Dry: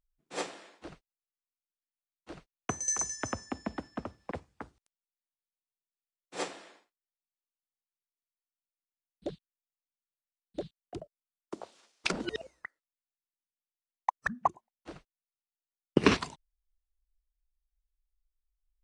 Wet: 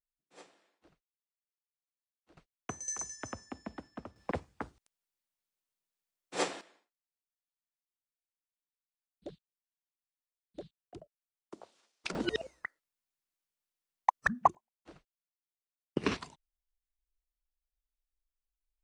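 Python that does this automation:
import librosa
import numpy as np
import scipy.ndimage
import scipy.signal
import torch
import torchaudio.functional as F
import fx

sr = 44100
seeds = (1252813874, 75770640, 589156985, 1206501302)

y = fx.gain(x, sr, db=fx.steps((0.0, -19.5), (2.37, -7.0), (4.16, 3.5), (6.61, -8.0), (12.15, 3.0), (14.55, -8.5)))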